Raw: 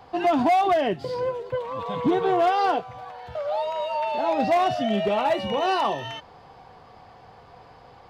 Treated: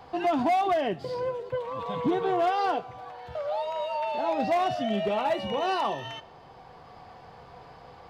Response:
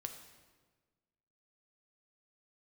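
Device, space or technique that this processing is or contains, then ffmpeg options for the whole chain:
ducked reverb: -filter_complex "[0:a]asplit=3[a][b][c];[1:a]atrim=start_sample=2205[d];[b][d]afir=irnorm=-1:irlink=0[e];[c]apad=whole_len=357070[f];[e][f]sidechaincompress=threshold=-34dB:ratio=8:attack=16:release=995,volume=3dB[g];[a][g]amix=inputs=2:normalize=0,volume=-5.5dB"

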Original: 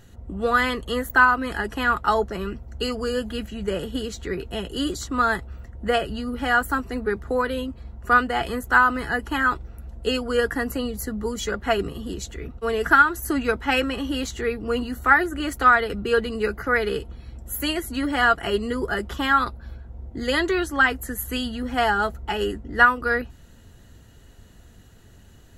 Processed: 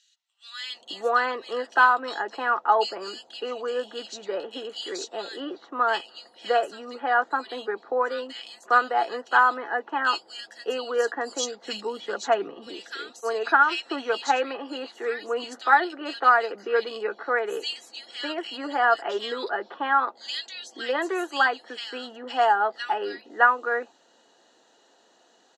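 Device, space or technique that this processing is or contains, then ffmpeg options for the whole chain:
phone speaker on a table: -filter_complex "[0:a]highpass=f=370:w=0.5412,highpass=f=370:w=1.3066,equalizer=f=410:t=q:w=4:g=-4,equalizer=f=810:t=q:w=4:g=5,equalizer=f=1.4k:t=q:w=4:g=-3,equalizer=f=2.1k:t=q:w=4:g=-6,equalizer=f=4k:t=q:w=4:g=3,lowpass=f=6.6k:w=0.5412,lowpass=f=6.6k:w=1.3066,asettb=1/sr,asplit=3[a][b][c];[a]atrim=end=11.044[d];[b]atrim=start=11.04:end=12.06,asetpts=PTS-STARTPTS,afade=t=in:d=0.004:c=qsin,afade=t=out:st=1.016:d=0.004:c=qsin,bass=f=250:g=8,treble=f=4k:g=8[e];[c]atrim=start=12.056[f];[d][e]acrossfade=d=0.004:c1=hsin:c2=qsin[g];[g][f]acrossfade=d=0.004:c1=qsin:c2=hsin,acrossover=split=2500[h][i];[h]adelay=610[j];[j][i]amix=inputs=2:normalize=0"

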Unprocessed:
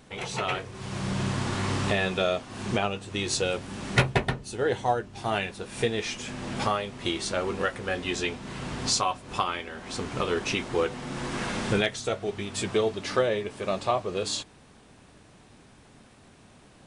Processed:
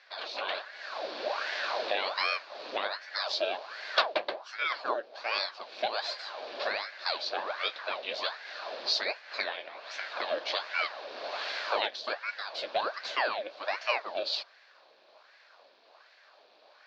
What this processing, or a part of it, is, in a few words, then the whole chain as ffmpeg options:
voice changer toy: -af "lowpass=f=5.2k:w=0.5412,lowpass=f=5.2k:w=1.3066,aeval=exprs='val(0)*sin(2*PI*980*n/s+980*0.9/1.3*sin(2*PI*1.3*n/s))':c=same,highpass=f=720:p=1,highpass=530,equalizer=f=600:t=q:w=4:g=8,equalizer=f=920:t=q:w=4:g=-4,equalizer=f=1.3k:t=q:w=4:g=-6,equalizer=f=2k:t=q:w=4:g=-8,equalizer=f=3k:t=q:w=4:g=-5,equalizer=f=4.4k:t=q:w=4:g=6,lowpass=f=4.7k:w=0.5412,lowpass=f=4.7k:w=1.3066,volume=3dB"

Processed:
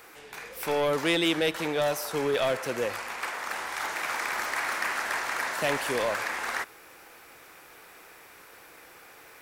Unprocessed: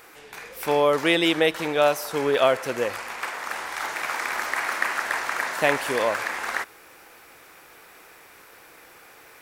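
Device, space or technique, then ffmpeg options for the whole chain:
one-band saturation: -filter_complex "[0:a]acrossover=split=210|3200[a][b][c];[b]asoftclip=type=tanh:threshold=-21dB[d];[a][d][c]amix=inputs=3:normalize=0,volume=-1.5dB"

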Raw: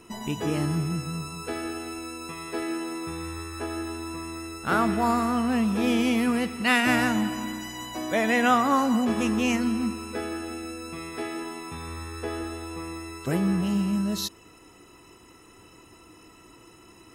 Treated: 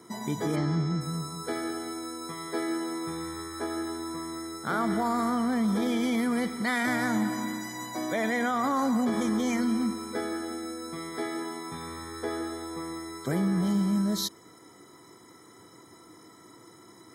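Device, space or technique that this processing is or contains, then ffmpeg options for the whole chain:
PA system with an anti-feedback notch: -filter_complex "[0:a]highpass=f=110:w=0.5412,highpass=f=110:w=1.3066,asuperstop=centerf=2700:order=20:qfactor=4.3,alimiter=limit=-19.5dB:level=0:latency=1:release=22,asplit=3[a][b][c];[a]afade=t=out:st=0.55:d=0.02[d];[b]lowpass=f=6.1k:w=0.5412,lowpass=f=6.1k:w=1.3066,afade=t=in:st=0.55:d=0.02,afade=t=out:st=1:d=0.02[e];[c]afade=t=in:st=1:d=0.02[f];[d][e][f]amix=inputs=3:normalize=0"

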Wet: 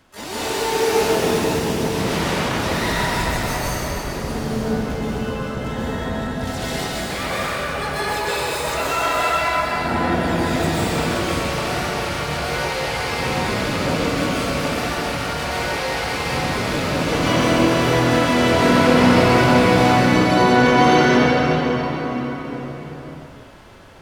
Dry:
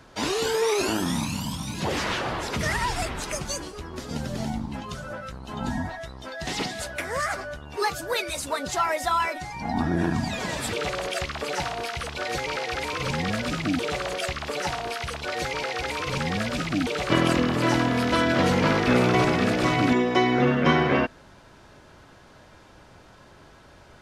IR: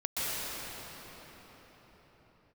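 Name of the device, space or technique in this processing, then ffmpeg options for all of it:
shimmer-style reverb: -filter_complex "[0:a]asettb=1/sr,asplit=3[a][b][c];[a]atrim=end=4.114[d];[b]atrim=start=4.11:end=5.5,asetpts=PTS-STARTPTS,afade=t=in:d=0.004:c=qsin,afade=t=out:st=1.386:d=0.004:c=qsin,adynamicequalizer=threshold=0.00562:dfrequency=210:dqfactor=4.6:tfrequency=210:tqfactor=4.6:attack=5:release=100:ratio=0.375:range=3:mode=boostabove:tftype=bell[e];[c]atrim=start=5.496[f];[d][e]acrossfade=d=0.004:c1=hsin:c2=qsin[g];[g][f]acrossfade=d=0.004:c1=qsin:c2=hsin,asplit=2[h][i];[i]asetrate=88200,aresample=44100,atempo=0.5,volume=-4dB[j];[h][j]amix=inputs=2:normalize=0[k];[1:a]atrim=start_sample=2205[l];[k][l]afir=irnorm=-1:irlink=0,volume=-4.5dB"

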